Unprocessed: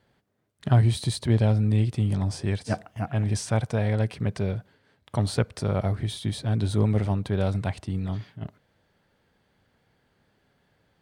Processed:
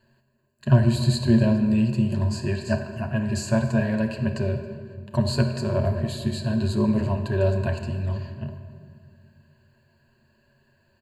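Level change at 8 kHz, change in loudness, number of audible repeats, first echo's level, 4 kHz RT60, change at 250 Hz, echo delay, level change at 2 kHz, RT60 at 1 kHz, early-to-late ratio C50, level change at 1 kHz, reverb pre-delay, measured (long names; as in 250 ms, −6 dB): −0.5 dB, +2.0 dB, 1, −21.5 dB, 1.2 s, +6.0 dB, 274 ms, +4.0 dB, 1.8 s, 7.0 dB, 0.0 dB, 7 ms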